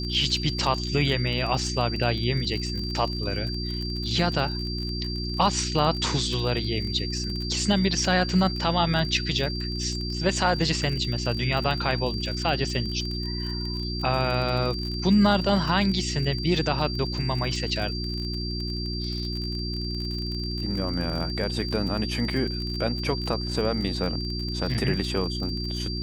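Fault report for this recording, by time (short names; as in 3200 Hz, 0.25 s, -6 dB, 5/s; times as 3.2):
crackle 38/s -31 dBFS
hum 60 Hz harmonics 6 -31 dBFS
tone 4700 Hz -33 dBFS
24.74–24.75 gap 6.5 ms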